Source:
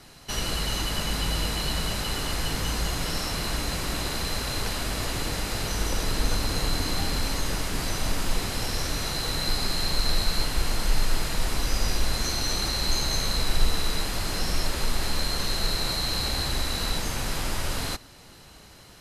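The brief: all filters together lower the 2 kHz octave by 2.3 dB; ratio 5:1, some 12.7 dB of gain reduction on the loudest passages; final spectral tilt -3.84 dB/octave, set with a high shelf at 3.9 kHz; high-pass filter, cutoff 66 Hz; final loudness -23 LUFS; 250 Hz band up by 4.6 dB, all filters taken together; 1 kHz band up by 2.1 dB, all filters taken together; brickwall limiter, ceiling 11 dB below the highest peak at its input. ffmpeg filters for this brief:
-af "highpass=66,equalizer=f=250:t=o:g=6,equalizer=f=1000:t=o:g=3.5,equalizer=f=2000:t=o:g=-3,highshelf=f=3900:g=-5,acompressor=threshold=0.0112:ratio=5,volume=15.8,alimiter=limit=0.188:level=0:latency=1"

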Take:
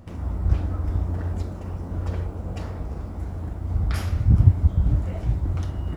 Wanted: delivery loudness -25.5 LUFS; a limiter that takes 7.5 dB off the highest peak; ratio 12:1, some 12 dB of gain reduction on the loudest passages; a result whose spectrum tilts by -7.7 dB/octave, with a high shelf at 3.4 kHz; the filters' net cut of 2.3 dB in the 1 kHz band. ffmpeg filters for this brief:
-af "equalizer=f=1000:t=o:g=-4,highshelf=f=3400:g=8,acompressor=threshold=0.1:ratio=12,volume=1.88,alimiter=limit=0.168:level=0:latency=1"

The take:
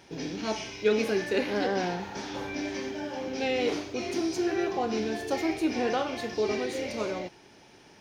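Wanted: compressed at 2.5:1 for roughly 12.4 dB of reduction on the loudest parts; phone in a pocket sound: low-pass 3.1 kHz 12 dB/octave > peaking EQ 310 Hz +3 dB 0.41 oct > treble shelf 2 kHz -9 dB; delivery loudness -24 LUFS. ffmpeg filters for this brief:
-af "acompressor=threshold=0.0112:ratio=2.5,lowpass=3100,equalizer=f=310:t=o:w=0.41:g=3,highshelf=f=2000:g=-9,volume=5.62"

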